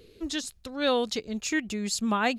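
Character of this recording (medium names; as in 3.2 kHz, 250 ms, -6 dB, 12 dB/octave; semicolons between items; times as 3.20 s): noise floor -57 dBFS; spectral tilt -3.0 dB/octave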